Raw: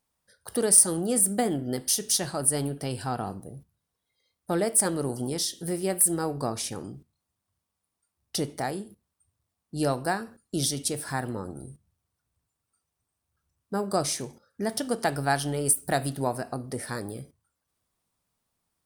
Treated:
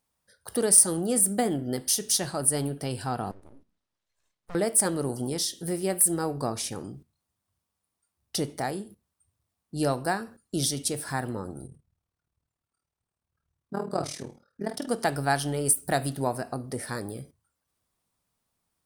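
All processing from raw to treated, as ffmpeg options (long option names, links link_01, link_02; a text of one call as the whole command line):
ffmpeg -i in.wav -filter_complex "[0:a]asettb=1/sr,asplit=3[link_01][link_02][link_03];[link_01]atrim=end=3.314[link_04];[link_02]atrim=start=3.31:end=4.55,asetpts=PTS-STARTPTS,afade=type=in:duration=0.004:curve=qsin,afade=type=out:start_time=1.236:duration=0.004:curve=qsin,lowpass=5800,aeval=exprs='abs(val(0))':channel_layout=same,acompressor=threshold=-59dB:ratio=1.5:attack=3.2:release=140:knee=1:detection=peak[link_05];[link_03]atrim=start=4.546[link_06];[link_04][link_05]acrossfade=duration=0.004:curve1=hsin:curve2=qsin[link_07];[link_07][link_06]acrossfade=duration=0.004:curve1=qsin:curve2=hsin,asettb=1/sr,asplit=3[link_08][link_09][link_10];[link_08]atrim=end=11.674[link_11];[link_09]atrim=start=11.67:end=14.88,asetpts=PTS-STARTPTS,afade=type=in:duration=0.004:curve=qsin,afade=type=out:start_time=3.206:duration=0.004:curve=qsin,aemphasis=mode=reproduction:type=cd,tremolo=f=38:d=0.857,asplit=2[link_12][link_13];[link_13]adelay=47,volume=-8.5dB[link_14];[link_12][link_14]amix=inputs=2:normalize=0,atrim=end_sample=141561[link_15];[link_10]atrim=start=14.876[link_16];[link_11][link_15]acrossfade=duration=0.004:curve1=hsin:curve2=qsin[link_17];[link_17][link_16]acrossfade=duration=0.004:curve1=qsin:curve2=hsin" out.wav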